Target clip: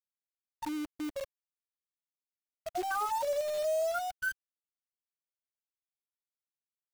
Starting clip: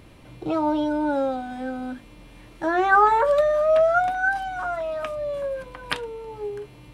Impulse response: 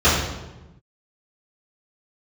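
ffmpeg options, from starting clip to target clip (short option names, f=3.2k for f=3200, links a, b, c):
-af "afftfilt=real='re*gte(hypot(re,im),0.794)':imag='im*gte(hypot(re,im),0.794)':win_size=1024:overlap=0.75,equalizer=f=220:t=o:w=1.9:g=-2,alimiter=limit=-16dB:level=0:latency=1:release=218,acompressor=threshold=-38dB:ratio=1.5,acrusher=bits=7:dc=4:mix=0:aa=0.000001,volume=-3dB"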